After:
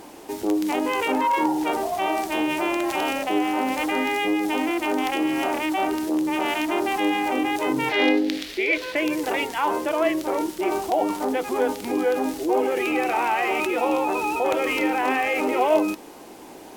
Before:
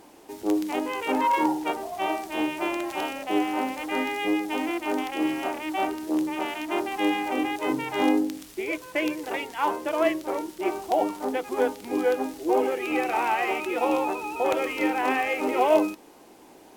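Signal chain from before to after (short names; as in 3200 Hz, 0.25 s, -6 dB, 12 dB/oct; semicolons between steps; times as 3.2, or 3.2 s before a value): 7.89–8.96 ten-band EQ 125 Hz -11 dB, 500 Hz +6 dB, 1000 Hz -6 dB, 2000 Hz +9 dB, 4000 Hz +10 dB, 8000 Hz -6 dB, 16000 Hz -7 dB; in parallel at -1 dB: negative-ratio compressor -32 dBFS, ratio -1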